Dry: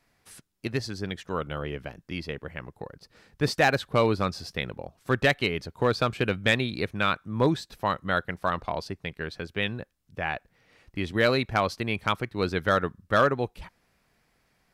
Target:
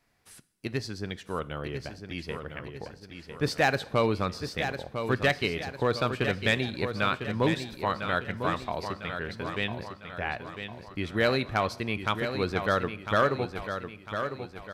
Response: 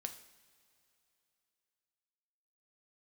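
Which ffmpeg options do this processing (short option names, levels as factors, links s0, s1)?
-filter_complex "[0:a]aecho=1:1:1002|2004|3006|4008|5010:0.398|0.183|0.0842|0.0388|0.0178,asplit=2[s0][s1];[1:a]atrim=start_sample=2205,afade=t=out:st=0.45:d=0.01,atrim=end_sample=20286[s2];[s1][s2]afir=irnorm=-1:irlink=0,volume=0.708[s3];[s0][s3]amix=inputs=2:normalize=0,volume=0.501"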